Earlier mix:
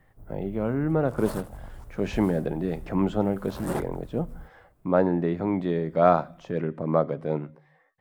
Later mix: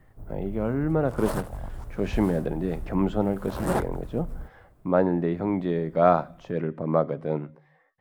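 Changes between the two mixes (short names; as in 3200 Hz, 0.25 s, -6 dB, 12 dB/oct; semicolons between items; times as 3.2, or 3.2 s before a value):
background +6.0 dB; master: add high shelf 5900 Hz -5 dB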